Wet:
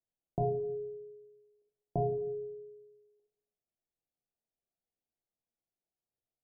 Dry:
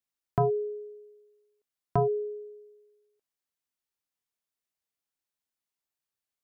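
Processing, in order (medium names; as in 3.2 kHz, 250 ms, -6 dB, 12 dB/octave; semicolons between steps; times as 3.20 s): compression, threshold -33 dBFS, peak gain reduction 11 dB; steep low-pass 820 Hz 72 dB/octave; reverberation RT60 0.65 s, pre-delay 6 ms, DRR 2 dB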